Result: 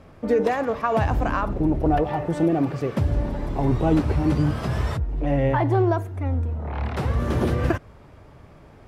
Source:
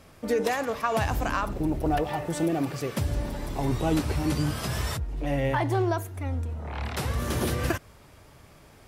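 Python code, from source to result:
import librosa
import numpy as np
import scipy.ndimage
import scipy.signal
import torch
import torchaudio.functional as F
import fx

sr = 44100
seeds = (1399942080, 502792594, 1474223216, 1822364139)

y = fx.lowpass(x, sr, hz=1100.0, slope=6)
y = y * librosa.db_to_amplitude(6.0)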